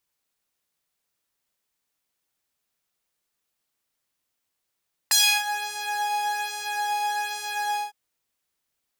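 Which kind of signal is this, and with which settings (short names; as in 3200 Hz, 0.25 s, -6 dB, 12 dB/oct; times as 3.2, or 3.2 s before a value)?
synth patch with pulse-width modulation G#5, oscillator 2 saw, sub -19.5 dB, noise -26.5 dB, filter highpass, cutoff 540 Hz, Q 1.2, filter envelope 3.5 oct, filter decay 0.45 s, filter sustain 5%, attack 7.2 ms, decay 0.31 s, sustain -20.5 dB, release 0.15 s, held 2.66 s, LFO 1.2 Hz, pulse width 25%, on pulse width 20%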